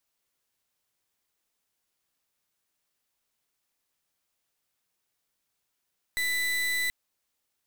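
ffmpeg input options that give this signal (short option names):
-f lavfi -i "aevalsrc='0.0398*(2*lt(mod(1990*t,1),0.35)-1)':d=0.73:s=44100"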